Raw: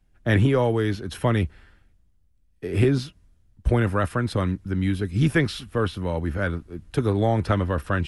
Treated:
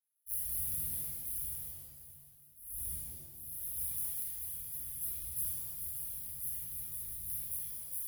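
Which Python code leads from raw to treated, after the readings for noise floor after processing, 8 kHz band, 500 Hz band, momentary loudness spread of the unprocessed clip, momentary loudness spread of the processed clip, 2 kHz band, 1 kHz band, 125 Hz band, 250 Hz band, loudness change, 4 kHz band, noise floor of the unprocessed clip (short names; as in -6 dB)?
-60 dBFS, +7.5 dB, under -40 dB, 8 LU, 10 LU, under -35 dB, under -35 dB, -31.0 dB, -38.0 dB, -12.5 dB, -22.0 dB, -62 dBFS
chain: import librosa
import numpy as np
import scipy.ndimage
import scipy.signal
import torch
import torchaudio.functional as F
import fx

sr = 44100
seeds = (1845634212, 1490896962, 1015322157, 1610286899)

y = fx.dead_time(x, sr, dead_ms=0.15)
y = scipy.signal.sosfilt(scipy.signal.butter(2, 65.0, 'highpass', fs=sr, output='sos'), y)
y = fx.spec_gate(y, sr, threshold_db=-30, keep='weak')
y = fx.peak_eq(y, sr, hz=270.0, db=-12.5, octaves=2.0)
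y = fx.notch_comb(y, sr, f0_hz=870.0)
y = fx.echo_feedback(y, sr, ms=701, feedback_pct=53, wet_db=-18)
y = fx.echo_pitch(y, sr, ms=233, semitones=2, count=3, db_per_echo=-3.0)
y = fx.brickwall_bandstop(y, sr, low_hz=290.0, high_hz=9600.0)
y = fx.rev_shimmer(y, sr, seeds[0], rt60_s=1.1, semitones=7, shimmer_db=-2, drr_db=-8.5)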